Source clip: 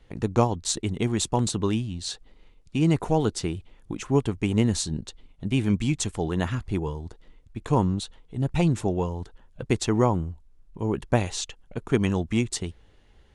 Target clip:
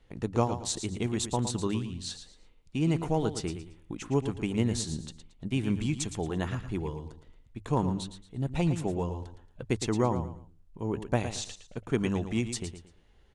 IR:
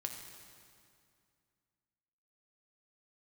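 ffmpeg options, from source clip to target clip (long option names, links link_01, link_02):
-af "bandreject=frequency=50:width_type=h:width=6,bandreject=frequency=100:width_type=h:width=6,aecho=1:1:113|226|339:0.316|0.0885|0.0248,volume=-5.5dB"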